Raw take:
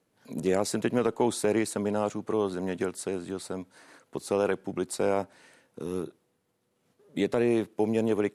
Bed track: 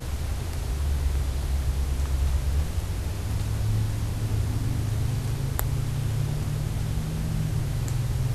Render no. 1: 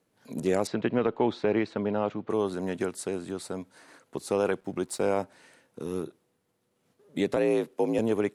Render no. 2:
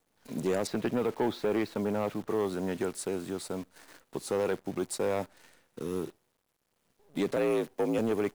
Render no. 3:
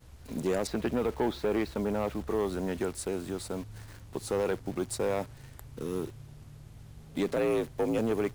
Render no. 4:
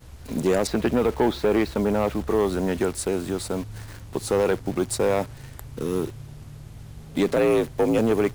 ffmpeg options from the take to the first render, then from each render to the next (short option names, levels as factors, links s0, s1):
-filter_complex "[0:a]asettb=1/sr,asplit=3[s0][s1][s2];[s0]atrim=end=0.674[s3];[s1]atrim=start=0.67:end=2.3,asetpts=PTS-STARTPTS,afade=t=in:d=0.004:c=qsin,afade=t=out:st=1.626:d=0.004:c=qsin,lowpass=f=3800:w=0.5412,lowpass=f=3800:w=1.3066[s4];[s2]atrim=start=2.296[s5];[s3][s4]acrossfade=d=0.004:c1=hsin:c2=qsin[s6];[s6][s5]acrossfade=d=0.004:c1=qsin:c2=hsin,asettb=1/sr,asplit=3[s7][s8][s9];[s7]atrim=end=4.604[s10];[s8]atrim=start=4.6:end=5.08,asetpts=PTS-STARTPTS,afade=t=in:d=0.004:c=qsin,afade=t=out:st=0.476:d=0.004:c=qsin,aeval=exprs='sgn(val(0))*max(abs(val(0))-0.001,0)':c=same[s11];[s9]atrim=start=5.076[s12];[s10][s11]acrossfade=d=0.004:c1=hsin:c2=qsin[s13];[s13][s12]acrossfade=d=0.004:c1=qsin:c2=hsin,asettb=1/sr,asplit=3[s14][s15][s16];[s14]atrim=end=7.364[s17];[s15]atrim=start=7.36:end=7.99,asetpts=PTS-STARTPTS,afade=t=in:d=0.004:c=qsin,afade=t=out:st=0.626:d=0.004:c=qsin,afreqshift=52[s18];[s16]atrim=start=7.986[s19];[s17][s18]acrossfade=d=0.004:c1=hsin:c2=qsin[s20];[s20][s19]acrossfade=d=0.004:c1=qsin:c2=hsin"
-af "acrusher=bits=9:dc=4:mix=0:aa=0.000001,asoftclip=type=tanh:threshold=0.0841"
-filter_complex "[1:a]volume=0.0841[s0];[0:a][s0]amix=inputs=2:normalize=0"
-af "volume=2.51"